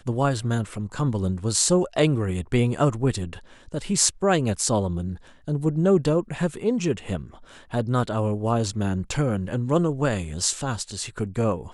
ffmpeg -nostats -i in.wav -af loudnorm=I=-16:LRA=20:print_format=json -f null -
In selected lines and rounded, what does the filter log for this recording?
"input_i" : "-24.5",
"input_tp" : "-1.4",
"input_lra" : "2.5",
"input_thresh" : "-34.7",